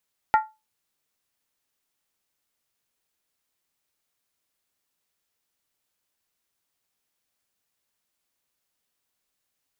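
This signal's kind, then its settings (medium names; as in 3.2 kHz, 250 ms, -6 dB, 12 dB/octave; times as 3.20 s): skin hit, lowest mode 869 Hz, decay 0.24 s, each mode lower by 7 dB, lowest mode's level -11.5 dB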